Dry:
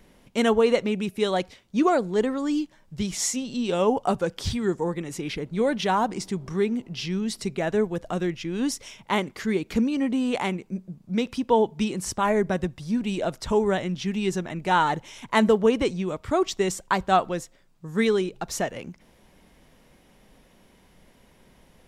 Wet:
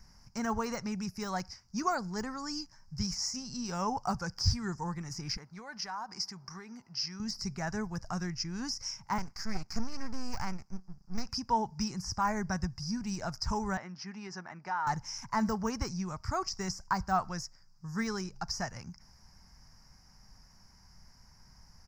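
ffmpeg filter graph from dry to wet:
ffmpeg -i in.wav -filter_complex "[0:a]asettb=1/sr,asplit=3[link_01][link_02][link_03];[link_01]atrim=end=5.374[link_04];[link_02]atrim=start=5.37:end=7.2,asetpts=PTS-STARTPTS,afade=type=in:duration=0.004:curve=qsin,afade=type=out:start_time=1.826:duration=0.004:curve=qsin,highpass=frequency=630:poles=1,equalizer=frequency=7700:width=1.1:gain=-8.5,acompressor=threshold=-31dB:ratio=4:attack=3.2:release=140:knee=1:detection=peak[link_05];[link_03]atrim=start=7.196[link_06];[link_04][link_05]acrossfade=duration=0.004:curve1=hsin:curve2=qsin[link_07];[link_07][link_06]acrossfade=duration=0.004:curve1=qsin:curve2=hsin,asettb=1/sr,asplit=3[link_08][link_09][link_10];[link_08]atrim=end=9.184[link_11];[link_09]atrim=start=9.18:end=11.29,asetpts=PTS-STARTPTS,afade=type=in:duration=0.004:curve=qsin,afade=type=out:start_time=2.106:duration=0.004:curve=qsin,highpass=frequency=130:width=0.5412,highpass=frequency=130:width=1.3066,aeval=exprs='max(val(0),0)':channel_layout=same[link_12];[link_10]atrim=start=11.286[link_13];[link_11][link_12]acrossfade=duration=0.004:curve1=hsin:curve2=qsin[link_14];[link_14][link_13]acrossfade=duration=0.004:curve1=qsin:curve2=hsin,asettb=1/sr,asplit=3[link_15][link_16][link_17];[link_15]atrim=end=13.774[link_18];[link_16]atrim=start=13.77:end=14.87,asetpts=PTS-STARTPTS,afade=type=in:duration=0.004:curve=qsin,afade=type=out:start_time=1.096:duration=0.004:curve=qsin,highpass=330,lowpass=2700,acompressor=threshold=-24dB:ratio=6:attack=3.2:release=140:knee=1:detection=peak[link_19];[link_17]atrim=start=14.866[link_20];[link_18][link_19]acrossfade=duration=0.004:curve1=hsin:curve2=qsin[link_21];[link_21][link_20]acrossfade=duration=0.004:curve1=qsin:curve2=hsin,deesser=0.9,firequalizer=gain_entry='entry(100,0);entry(300,-19);entry(510,-22);entry(820,-6);entry(1500,-5);entry(3500,-27);entry(5000,12);entry(8500,-14);entry(13000,-9)':delay=0.05:min_phase=1,volume=2dB" out.wav

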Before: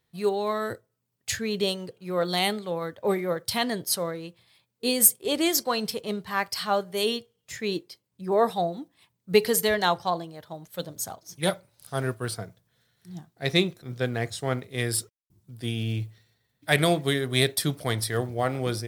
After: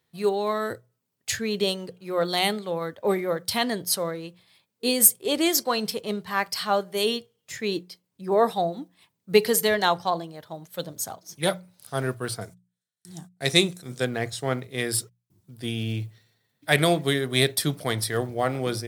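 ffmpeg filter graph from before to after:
ffmpeg -i in.wav -filter_complex "[0:a]asettb=1/sr,asplit=3[link_01][link_02][link_03];[link_01]atrim=end=12.414[link_04];[link_02]atrim=start=12.41:end=14.05,asetpts=PTS-STARTPTS,afade=type=in:duration=0.004:curve=qsin,afade=type=out:start_time=1.636:duration=0.004:curve=qsin,equalizer=frequency=8500:width_type=o:width=1.2:gain=15,agate=range=-28dB:threshold=-54dB:ratio=16:release=100:detection=peak[link_05];[link_03]atrim=start=14.046[link_06];[link_04][link_05]acrossfade=duration=0.004:curve1=hsin:curve2=qsin[link_07];[link_07][link_06]acrossfade=duration=0.004:curve1=qsin:curve2=hsin,highpass=93,bandreject=frequency=60:width_type=h:width=6,bandreject=frequency=120:width_type=h:width=6,bandreject=frequency=180:width_type=h:width=6,volume=1.5dB" out.wav

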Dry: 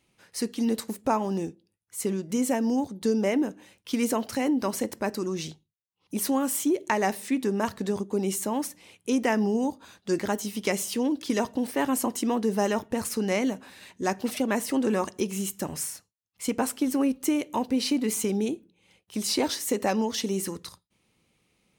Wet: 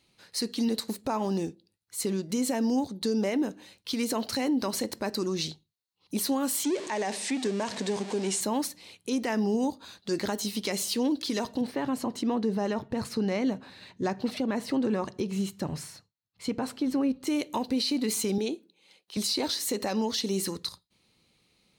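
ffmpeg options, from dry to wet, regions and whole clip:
ffmpeg -i in.wav -filter_complex "[0:a]asettb=1/sr,asplit=3[link_01][link_02][link_03];[link_01]atrim=end=6.644[link_04];[link_02]atrim=start=6.64:end=8.41,asetpts=PTS-STARTPTS,afade=type=in:duration=0.004:curve=qsin,afade=type=out:start_time=1.766:duration=0.004:curve=qsin,aeval=exprs='val(0)+0.5*0.0282*sgn(val(0))':channel_layout=same,highpass=240,equalizer=frequency=330:width_type=q:width=4:gain=-6,equalizer=frequency=1300:width_type=q:width=4:gain=-9,equalizer=frequency=4200:width_type=q:width=4:gain=-8,equalizer=frequency=8200:width_type=q:width=4:gain=3,lowpass=frequency=8500:width=0.5412,lowpass=frequency=8500:width=1.3066[link_05];[link_03]atrim=start=8.406[link_06];[link_04][link_05]acrossfade=duration=0.004:curve1=hsin:curve2=qsin[link_07];[link_07][link_06]acrossfade=duration=0.004:curve1=qsin:curve2=hsin,asettb=1/sr,asplit=3[link_08][link_09][link_10];[link_08]atrim=end=11.614[link_11];[link_09]atrim=start=11.61:end=17.27,asetpts=PTS-STARTPTS,afade=type=in:duration=0.004:curve=qsin,afade=type=out:start_time=5.656:duration=0.004:curve=qsin,lowpass=frequency=2000:poles=1,equalizer=frequency=130:width=2.1:gain=9[link_12];[link_10]atrim=start=17.266[link_13];[link_11][link_12]acrossfade=duration=0.004:curve1=hsin:curve2=qsin[link_14];[link_14][link_13]acrossfade=duration=0.004:curve1=qsin:curve2=hsin,asettb=1/sr,asplit=3[link_15][link_16][link_17];[link_15]atrim=end=18.384[link_18];[link_16]atrim=start=18.38:end=19.17,asetpts=PTS-STARTPTS,afade=type=in:duration=0.004:curve=qsin,afade=type=out:start_time=0.786:duration=0.004:curve=qsin,acrossover=split=6600[link_19][link_20];[link_20]acompressor=threshold=-59dB:ratio=4:attack=1:release=60[link_21];[link_19][link_21]amix=inputs=2:normalize=0,highpass=290[link_22];[link_17]atrim=start=19.166[link_23];[link_18][link_22]acrossfade=duration=0.004:curve1=hsin:curve2=qsin[link_24];[link_24][link_23]acrossfade=duration=0.004:curve1=qsin:curve2=hsin,equalizer=frequency=4200:width_type=o:width=0.39:gain=12,alimiter=limit=-19.5dB:level=0:latency=1:release=96" out.wav

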